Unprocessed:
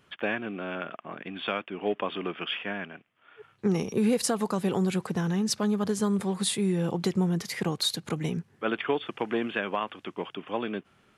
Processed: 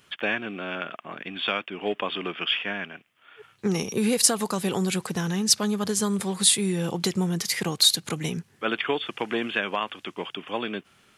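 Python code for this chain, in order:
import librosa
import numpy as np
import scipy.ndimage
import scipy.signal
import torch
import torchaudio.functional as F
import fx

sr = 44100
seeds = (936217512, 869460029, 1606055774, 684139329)

y = fx.high_shelf(x, sr, hz=2300.0, db=12.0)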